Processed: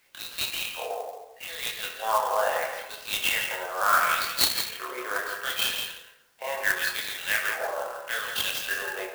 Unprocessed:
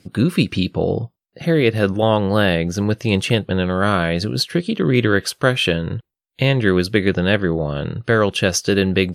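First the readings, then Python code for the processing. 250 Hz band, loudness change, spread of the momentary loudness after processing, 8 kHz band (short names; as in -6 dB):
-31.5 dB, -8.5 dB, 12 LU, -2.5 dB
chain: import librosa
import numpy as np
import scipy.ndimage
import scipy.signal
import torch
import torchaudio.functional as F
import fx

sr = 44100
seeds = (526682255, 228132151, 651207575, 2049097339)

p1 = scipy.signal.sosfilt(scipy.signal.butter(4, 540.0, 'highpass', fs=sr, output='sos'), x)
p2 = fx.peak_eq(p1, sr, hz=5900.0, db=-3.5, octaves=0.77)
p3 = fx.filter_lfo_bandpass(p2, sr, shape='sine', hz=0.75, low_hz=810.0, high_hz=4400.0, q=3.1)
p4 = fx.chorus_voices(p3, sr, voices=4, hz=0.46, base_ms=27, depth_ms=3.0, mix_pct=50)
p5 = fx.quant_dither(p4, sr, seeds[0], bits=12, dither='triangular')
p6 = p5 + fx.echo_single(p5, sr, ms=167, db=-7.0, dry=0)
p7 = fx.rev_plate(p6, sr, seeds[1], rt60_s=1.0, hf_ratio=0.6, predelay_ms=0, drr_db=2.5)
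p8 = fx.clock_jitter(p7, sr, seeds[2], jitter_ms=0.032)
y = F.gain(torch.from_numpy(p8), 4.5).numpy()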